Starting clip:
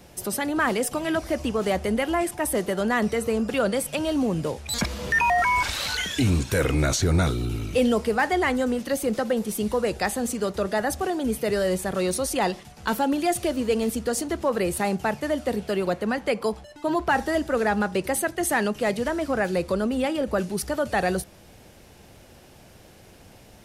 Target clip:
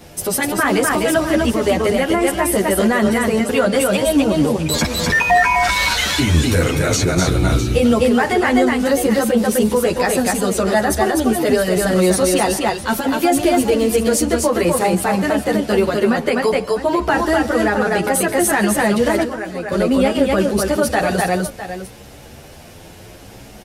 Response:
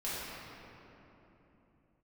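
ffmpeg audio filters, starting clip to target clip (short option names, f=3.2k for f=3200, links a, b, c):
-filter_complex "[0:a]aecho=1:1:141|251|654:0.1|0.668|0.178,asettb=1/sr,asplit=3[a][b][c];[a]atrim=end=19.234[d];[b]atrim=start=19.23:end=19.72,asetpts=PTS-STARTPTS,afade=t=in:d=0.004:c=qsin,afade=t=out:st=0.486:d=0.004:c=qsin,acrossover=split=150|4300[e][f][g];[e]acompressor=threshold=-51dB:ratio=4[h];[f]acompressor=threshold=-33dB:ratio=4[i];[g]acompressor=threshold=-58dB:ratio=4[j];[h][i][j]amix=inputs=3:normalize=0[k];[c]atrim=start=19.716[l];[d][k]acrossfade=d=0.004:c1=hsin:c2=qsin[m];[m][l]acrossfade=d=0.004:c1=qsin:c2=hsin,alimiter=level_in=15dB:limit=-1dB:release=50:level=0:latency=1,asplit=2[n][o];[o]adelay=9.8,afreqshift=0.62[p];[n][p]amix=inputs=2:normalize=1,volume=-3dB"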